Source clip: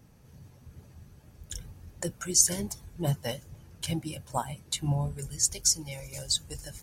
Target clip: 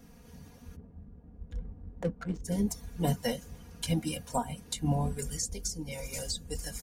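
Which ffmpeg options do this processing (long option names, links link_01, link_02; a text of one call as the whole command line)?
ffmpeg -i in.wav -filter_complex "[0:a]acrossover=split=620[link_01][link_02];[link_02]acompressor=threshold=-38dB:ratio=12[link_03];[link_01][link_03]amix=inputs=2:normalize=0,aecho=1:1:4.2:0.84,asplit=3[link_04][link_05][link_06];[link_04]afade=type=out:start_time=0.75:duration=0.02[link_07];[link_05]adynamicsmooth=sensitivity=4.5:basefreq=540,afade=type=in:start_time=0.75:duration=0.02,afade=type=out:start_time=2.44:duration=0.02[link_08];[link_06]afade=type=in:start_time=2.44:duration=0.02[link_09];[link_07][link_08][link_09]amix=inputs=3:normalize=0,volume=2.5dB" out.wav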